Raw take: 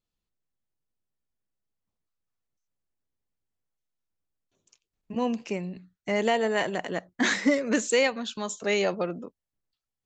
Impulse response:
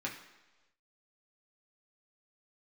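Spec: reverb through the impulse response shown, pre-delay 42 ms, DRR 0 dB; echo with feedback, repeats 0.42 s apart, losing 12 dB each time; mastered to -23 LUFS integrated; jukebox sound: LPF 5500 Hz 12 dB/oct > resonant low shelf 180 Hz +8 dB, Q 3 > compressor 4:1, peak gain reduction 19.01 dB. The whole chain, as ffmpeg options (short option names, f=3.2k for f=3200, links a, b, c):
-filter_complex "[0:a]aecho=1:1:420|840|1260:0.251|0.0628|0.0157,asplit=2[a][b];[1:a]atrim=start_sample=2205,adelay=42[c];[b][c]afir=irnorm=-1:irlink=0,volume=-3dB[d];[a][d]amix=inputs=2:normalize=0,lowpass=5.5k,lowshelf=f=180:t=q:w=3:g=8,acompressor=threshold=-39dB:ratio=4,volume=17dB"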